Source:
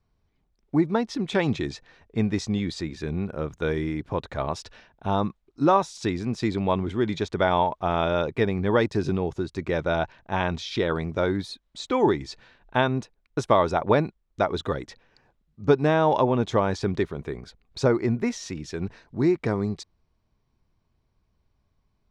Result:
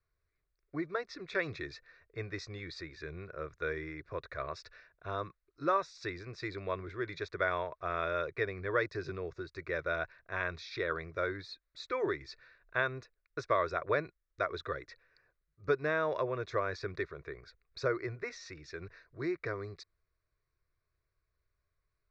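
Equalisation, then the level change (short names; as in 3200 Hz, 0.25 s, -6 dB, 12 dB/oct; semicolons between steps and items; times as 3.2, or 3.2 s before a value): LPF 4000 Hz 24 dB/oct; tilt shelf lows -8.5 dB, about 1500 Hz; fixed phaser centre 840 Hz, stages 6; -3.0 dB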